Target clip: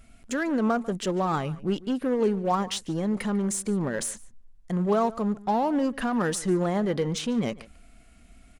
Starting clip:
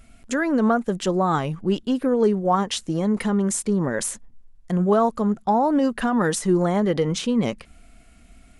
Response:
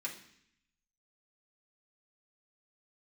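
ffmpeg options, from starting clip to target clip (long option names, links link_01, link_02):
-filter_complex "[0:a]asplit=2[link_01][link_02];[link_02]aeval=exprs='0.0531*(abs(mod(val(0)/0.0531+3,4)-2)-1)':channel_layout=same,volume=-12dB[link_03];[link_01][link_03]amix=inputs=2:normalize=0,asplit=2[link_04][link_05];[link_05]adelay=145.8,volume=-20dB,highshelf=frequency=4000:gain=-3.28[link_06];[link_04][link_06]amix=inputs=2:normalize=0,volume=-5dB"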